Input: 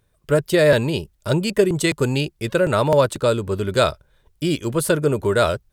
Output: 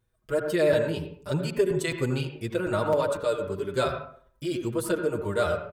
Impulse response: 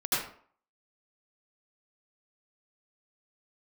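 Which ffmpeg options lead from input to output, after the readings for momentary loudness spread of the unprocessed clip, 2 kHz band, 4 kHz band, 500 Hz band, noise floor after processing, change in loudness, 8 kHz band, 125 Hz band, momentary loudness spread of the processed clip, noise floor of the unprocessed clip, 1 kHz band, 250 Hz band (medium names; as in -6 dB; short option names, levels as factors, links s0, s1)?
7 LU, -8.5 dB, -10.5 dB, -7.0 dB, -68 dBFS, -7.5 dB, -10.5 dB, -9.5 dB, 8 LU, -64 dBFS, -7.5 dB, -8.0 dB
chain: -filter_complex "[0:a]asplit=2[s0][s1];[1:a]atrim=start_sample=2205,lowpass=2300[s2];[s1][s2]afir=irnorm=-1:irlink=0,volume=0.237[s3];[s0][s3]amix=inputs=2:normalize=0,asplit=2[s4][s5];[s5]adelay=5.7,afreqshift=-0.44[s6];[s4][s6]amix=inputs=2:normalize=1,volume=0.422"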